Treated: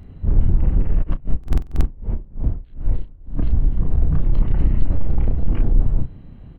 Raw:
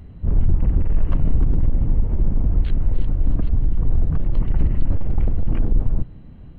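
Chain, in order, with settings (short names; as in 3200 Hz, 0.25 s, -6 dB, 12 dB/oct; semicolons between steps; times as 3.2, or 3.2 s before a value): doubler 32 ms -5 dB; stuck buffer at 1.39, samples 2048, times 9; 1.02–3.36 dB-linear tremolo 5.4 Hz -> 1.6 Hz, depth 27 dB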